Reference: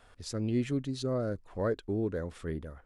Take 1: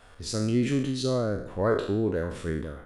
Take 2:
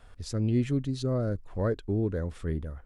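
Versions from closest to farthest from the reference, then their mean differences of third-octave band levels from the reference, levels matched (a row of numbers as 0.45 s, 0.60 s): 2, 1; 2.5 dB, 5.0 dB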